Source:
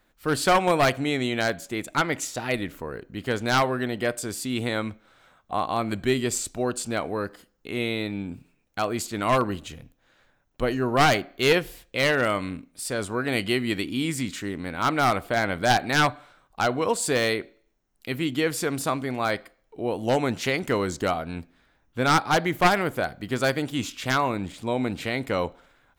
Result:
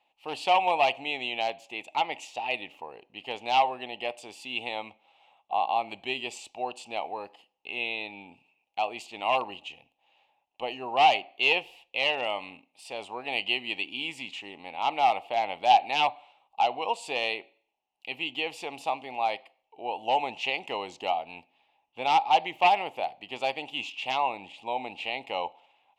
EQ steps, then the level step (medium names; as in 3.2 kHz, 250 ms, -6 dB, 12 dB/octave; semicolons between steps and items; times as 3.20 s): two resonant band-passes 1.5 kHz, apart 1.7 oct; +7.5 dB